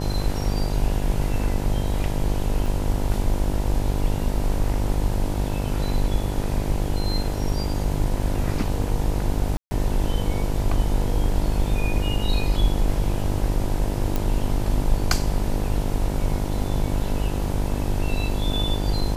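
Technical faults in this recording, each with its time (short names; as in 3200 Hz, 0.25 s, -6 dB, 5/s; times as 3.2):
buzz 50 Hz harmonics 20 -26 dBFS
2.66 gap 2.9 ms
9.57–9.71 gap 0.14 s
14.16 pop -10 dBFS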